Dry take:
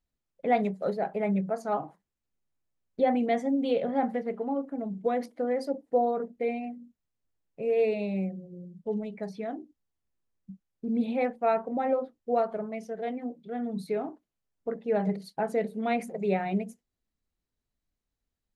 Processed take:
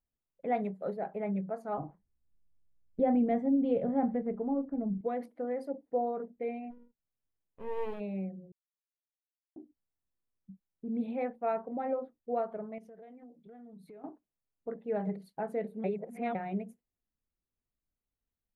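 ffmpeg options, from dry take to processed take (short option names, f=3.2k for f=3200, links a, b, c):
-filter_complex "[0:a]asettb=1/sr,asplit=3[a][b][c];[a]atrim=end=1.784[d];[b]atrim=start=1.78:end=5.01,asetpts=PTS-STARTPTS,afade=t=in:d=0.004:c=qsin,afade=t=out:st=3.226:d=0.004:c=qsin,aemphasis=mode=reproduction:type=riaa[e];[c]atrim=start=5.006[f];[d][e]acrossfade=d=0.004:c1=hsin:c2=qsin[g];[g][f]acrossfade=d=0.004:c1=qsin:c2=hsin,asplit=3[h][i][j];[h]afade=t=out:st=6.7:d=0.02[k];[i]aeval=exprs='max(val(0),0)':c=same,afade=t=in:st=6.7:d=0.02,afade=t=out:st=7.99:d=0.02[l];[j]afade=t=in:st=7.99:d=0.02[m];[k][l][m]amix=inputs=3:normalize=0,asettb=1/sr,asplit=3[n][o][p];[n]atrim=end=12.784[q];[o]atrim=start=12.78:end=14.04,asetpts=PTS-STARTPTS,afade=t=in:d=0.004:c=qsin,afade=t=out:st=1.256:d=0.004:c=qsin,acompressor=threshold=-43dB:ratio=6:attack=3.2:release=140:knee=1:detection=peak[r];[p]atrim=start=14.036[s];[q][r]acrossfade=d=0.004:c1=hsin:c2=qsin[t];[t][s]acrossfade=d=0.004:c1=qsin:c2=hsin,asplit=5[u][v][w][x][y];[u]atrim=end=8.52,asetpts=PTS-STARTPTS,afade=t=out:st=8.516:d=0.004:c=hsin[z];[v]atrim=start=8.52:end=9.56,asetpts=PTS-STARTPTS,volume=0[aa];[w]atrim=start=9.56:end=15.842,asetpts=PTS-STARTPTS,afade=t=in:d=0.004:c=hsin[ab];[x]atrim=start=15.838:end=16.352,asetpts=PTS-STARTPTS,areverse[ac];[y]atrim=start=16.348[ad];[z][aa][ab]concat=n=3:v=0:a=1[ae];[ae][ac]acrossfade=d=0.004:c1=hsin:c2=hsin[af];[af][ad]acrossfade=d=0.004:c1=hsin:c2=hsin,equalizer=f=5.7k:t=o:w=1.5:g=-14.5,volume=-6dB"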